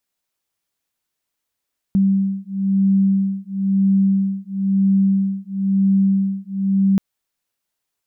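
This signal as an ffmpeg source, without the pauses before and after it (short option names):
-f lavfi -i "aevalsrc='0.133*(sin(2*PI*194*t)+sin(2*PI*195*t))':d=5.03:s=44100"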